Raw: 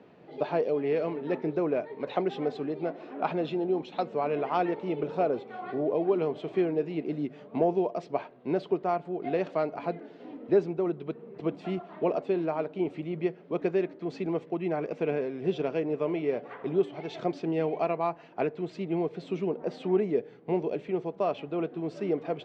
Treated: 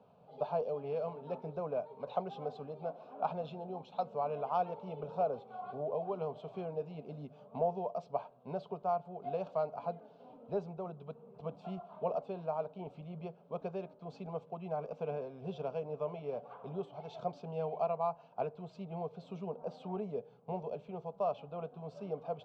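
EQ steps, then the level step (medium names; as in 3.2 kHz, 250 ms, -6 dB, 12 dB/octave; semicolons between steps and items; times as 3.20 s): treble shelf 4.5 kHz -11 dB; static phaser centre 790 Hz, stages 4; -3.5 dB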